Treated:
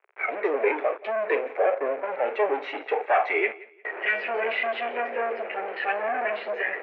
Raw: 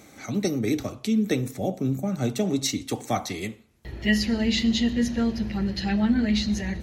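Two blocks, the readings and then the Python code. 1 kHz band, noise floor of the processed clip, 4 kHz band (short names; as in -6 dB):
+9.0 dB, -52 dBFS, -11.0 dB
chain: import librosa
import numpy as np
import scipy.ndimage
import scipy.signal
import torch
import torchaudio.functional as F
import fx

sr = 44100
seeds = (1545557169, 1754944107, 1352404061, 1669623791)

p1 = fx.fuzz(x, sr, gain_db=39.0, gate_db=-42.0)
p2 = fx.noise_reduce_blind(p1, sr, reduce_db=8)
p3 = fx.dynamic_eq(p2, sr, hz=1100.0, q=1.7, threshold_db=-36.0, ratio=4.0, max_db=-6)
p4 = scipy.signal.sosfilt(scipy.signal.cheby1(4, 1.0, [410.0, 2400.0], 'bandpass', fs=sr, output='sos'), p3)
y = p4 + fx.echo_feedback(p4, sr, ms=177, feedback_pct=28, wet_db=-20.5, dry=0)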